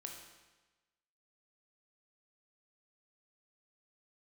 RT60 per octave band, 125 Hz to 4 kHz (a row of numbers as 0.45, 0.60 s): 1.2, 1.1, 1.2, 1.2, 1.2, 1.1 s